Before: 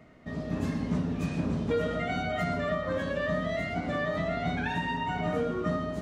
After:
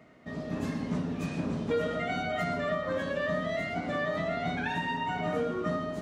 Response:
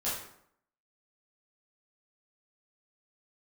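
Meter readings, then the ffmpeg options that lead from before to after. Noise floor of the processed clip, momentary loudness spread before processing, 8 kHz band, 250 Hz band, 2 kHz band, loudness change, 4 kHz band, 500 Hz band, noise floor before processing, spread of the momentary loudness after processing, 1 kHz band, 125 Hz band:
-40 dBFS, 2 LU, n/a, -2.0 dB, 0.0 dB, -1.0 dB, 0.0 dB, -0.5 dB, -37 dBFS, 3 LU, 0.0 dB, -3.5 dB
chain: -af "highpass=f=170:p=1"

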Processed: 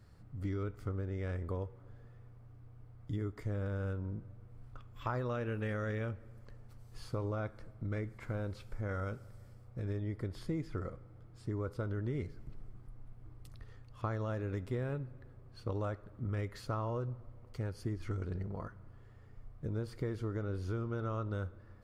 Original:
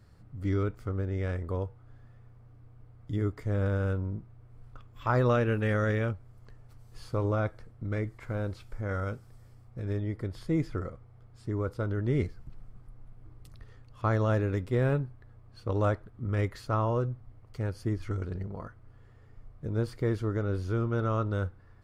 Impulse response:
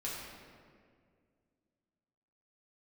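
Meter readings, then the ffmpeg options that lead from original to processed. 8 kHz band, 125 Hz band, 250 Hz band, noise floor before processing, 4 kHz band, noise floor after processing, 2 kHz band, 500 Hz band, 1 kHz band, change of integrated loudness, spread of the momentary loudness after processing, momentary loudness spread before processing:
n/a, -7.5 dB, -7.5 dB, -55 dBFS, -6.0 dB, -56 dBFS, -8.5 dB, -8.5 dB, -9.0 dB, -8.0 dB, 19 LU, 12 LU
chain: -filter_complex "[0:a]acompressor=threshold=-31dB:ratio=6,asplit=2[a][b];[1:a]atrim=start_sample=2205,adelay=66[c];[b][c]afir=irnorm=-1:irlink=0,volume=-22.5dB[d];[a][d]amix=inputs=2:normalize=0,volume=-2dB"

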